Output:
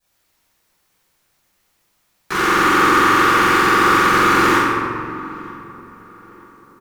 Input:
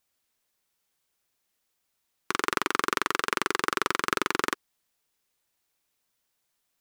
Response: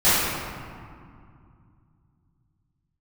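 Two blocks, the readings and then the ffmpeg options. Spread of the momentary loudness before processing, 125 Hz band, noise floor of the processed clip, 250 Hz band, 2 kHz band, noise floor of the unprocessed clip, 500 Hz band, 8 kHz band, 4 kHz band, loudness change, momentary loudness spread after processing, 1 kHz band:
4 LU, +19.5 dB, -65 dBFS, +17.5 dB, +14.0 dB, -78 dBFS, +13.5 dB, +8.5 dB, +10.0 dB, +14.0 dB, 15 LU, +16.0 dB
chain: -filter_complex "[0:a]asoftclip=type=tanh:threshold=-8dB,asplit=2[a][b];[b]adelay=929,lowpass=f=1.5k:p=1,volume=-20dB,asplit=2[c][d];[d]adelay=929,lowpass=f=1.5k:p=1,volume=0.47,asplit=2[e][f];[f]adelay=929,lowpass=f=1.5k:p=1,volume=0.47,asplit=2[g][h];[h]adelay=929,lowpass=f=1.5k:p=1,volume=0.47[i];[a][c][e][g][i]amix=inputs=5:normalize=0[j];[1:a]atrim=start_sample=2205[k];[j][k]afir=irnorm=-1:irlink=0,volume=-6dB"

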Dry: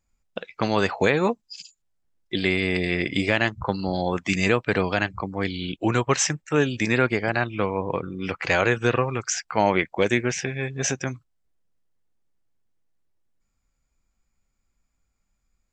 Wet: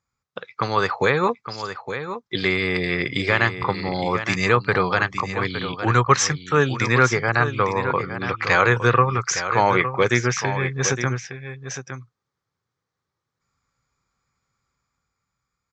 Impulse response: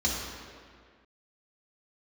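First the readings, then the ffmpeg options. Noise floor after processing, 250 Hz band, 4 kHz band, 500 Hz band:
-83 dBFS, -1.0 dB, +2.5 dB, +2.0 dB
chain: -af "dynaudnorm=f=120:g=17:m=5.5dB,highpass=110,equalizer=f=120:t=q:w=4:g=5,equalizer=f=210:t=q:w=4:g=-9,equalizer=f=310:t=q:w=4:g=-8,equalizer=f=650:t=q:w=4:g=-8,equalizer=f=1.2k:t=q:w=4:g=8,equalizer=f=2.8k:t=q:w=4:g=-8,lowpass=f=6.3k:w=0.5412,lowpass=f=6.3k:w=1.3066,aecho=1:1:863:0.316,volume=1.5dB"

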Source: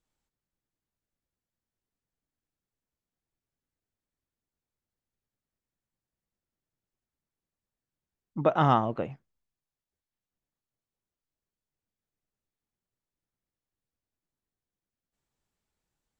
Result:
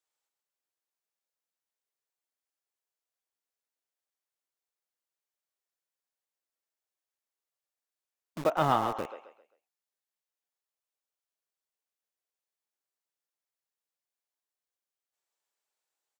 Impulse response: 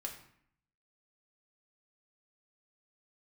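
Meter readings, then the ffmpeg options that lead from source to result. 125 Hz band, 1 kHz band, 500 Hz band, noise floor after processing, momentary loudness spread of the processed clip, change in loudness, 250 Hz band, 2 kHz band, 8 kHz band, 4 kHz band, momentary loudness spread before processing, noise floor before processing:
-8.5 dB, -2.0 dB, -2.5 dB, under -85 dBFS, 15 LU, -3.0 dB, -6.0 dB, -1.0 dB, n/a, 0.0 dB, 15 LU, under -85 dBFS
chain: -filter_complex "[0:a]bass=f=250:g=-6,treble=f=4k:g=3,acrossover=split=400[a][b];[a]acrusher=bits=5:mix=0:aa=0.000001[c];[b]aecho=1:1:132|264|396|528:0.501|0.17|0.0579|0.0197[d];[c][d]amix=inputs=2:normalize=0,volume=-3dB"

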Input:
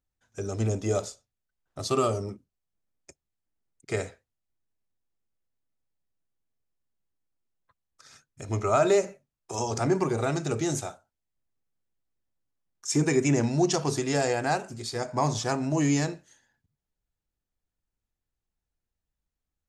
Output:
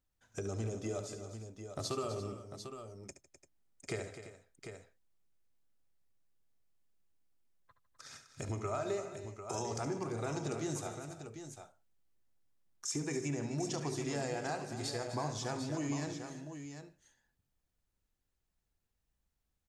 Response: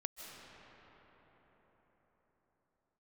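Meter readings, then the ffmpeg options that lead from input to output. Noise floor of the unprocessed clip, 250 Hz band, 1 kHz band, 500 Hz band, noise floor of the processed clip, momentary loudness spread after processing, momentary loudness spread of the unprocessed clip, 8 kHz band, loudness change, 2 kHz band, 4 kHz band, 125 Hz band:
under -85 dBFS, -11.5 dB, -11.5 dB, -11.5 dB, -83 dBFS, 15 LU, 14 LU, -9.0 dB, -12.5 dB, -11.0 dB, -8.5 dB, -10.5 dB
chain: -af "acompressor=threshold=-39dB:ratio=4,aecho=1:1:71|153|254|342|747:0.282|0.126|0.251|0.168|0.355,volume=1dB"

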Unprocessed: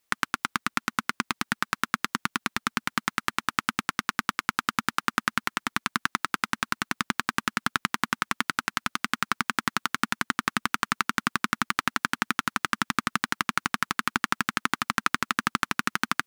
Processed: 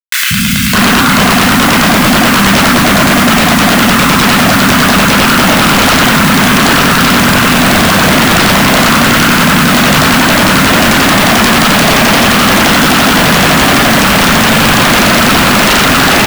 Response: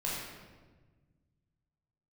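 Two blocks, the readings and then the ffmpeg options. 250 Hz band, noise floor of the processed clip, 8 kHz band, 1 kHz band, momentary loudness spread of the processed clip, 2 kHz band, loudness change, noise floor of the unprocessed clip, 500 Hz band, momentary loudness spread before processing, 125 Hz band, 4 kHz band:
+27.0 dB, -8 dBFS, +24.0 dB, +19.5 dB, 1 LU, +20.0 dB, +22.5 dB, -76 dBFS, +33.0 dB, 2 LU, +29.5 dB, +24.0 dB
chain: -filter_complex "[0:a]acrossover=split=130|3800[a][b][c];[c]aeval=exprs='(mod(17.8*val(0)+1,2)-1)/17.8':c=same[d];[a][b][d]amix=inputs=3:normalize=0[e];[1:a]atrim=start_sample=2205,afade=t=out:st=0.22:d=0.01,atrim=end_sample=10143[f];[e][f]afir=irnorm=-1:irlink=0,afreqshift=16,acrusher=bits=5:mix=0:aa=0.000001,lowshelf=f=290:t=q:w=3:g=7,acrossover=split=180|2300[g][h][i];[g]adelay=180[j];[h]adelay=610[k];[j][k][i]amix=inputs=3:normalize=0,aeval=exprs='0.0596*(abs(mod(val(0)/0.0596+3,4)-2)-1)':c=same,alimiter=level_in=33.5dB:limit=-1dB:release=50:level=0:latency=1,volume=-1dB"

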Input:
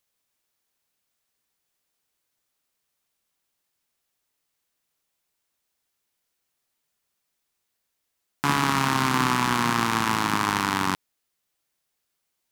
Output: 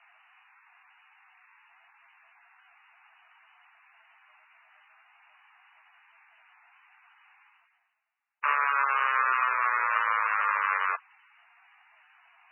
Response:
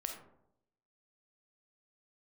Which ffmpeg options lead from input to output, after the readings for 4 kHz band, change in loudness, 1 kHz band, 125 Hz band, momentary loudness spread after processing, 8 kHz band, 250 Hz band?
-18.0 dB, -2.5 dB, -1.5 dB, under -40 dB, 4 LU, under -40 dB, under -40 dB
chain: -af "asoftclip=type=hard:threshold=-6dB,highpass=f=570:t=q:w=0.5412,highpass=f=570:t=q:w=1.307,lowpass=f=2.6k:t=q:w=0.5176,lowpass=f=2.6k:t=q:w=0.7071,lowpass=f=2.6k:t=q:w=1.932,afreqshift=160,areverse,acompressor=mode=upward:threshold=-39dB:ratio=2.5,areverse,aeval=exprs='0.316*sin(PI/2*1.41*val(0)/0.316)':c=same,volume=-6dB" -ar 16000 -c:a libmp3lame -b:a 8k

